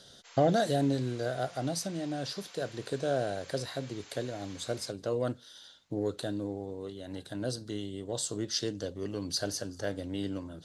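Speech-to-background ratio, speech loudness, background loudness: 17.5 dB, −34.0 LKFS, −51.5 LKFS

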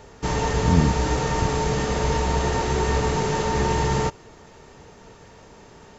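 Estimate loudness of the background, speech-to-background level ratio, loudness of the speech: −23.5 LKFS, 0.5 dB, −23.0 LKFS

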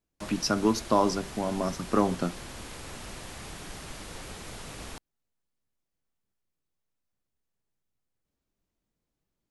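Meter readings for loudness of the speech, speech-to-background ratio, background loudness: −28.0 LKFS, 13.5 dB, −41.5 LKFS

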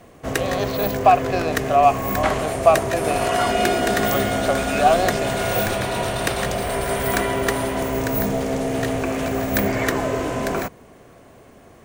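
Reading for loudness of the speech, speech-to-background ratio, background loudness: −21.5 LKFS, 1.0 dB, −22.5 LKFS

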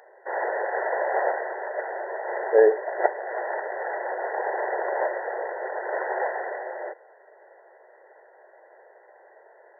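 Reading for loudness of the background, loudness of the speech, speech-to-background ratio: −29.0 LKFS, −20.0 LKFS, 9.0 dB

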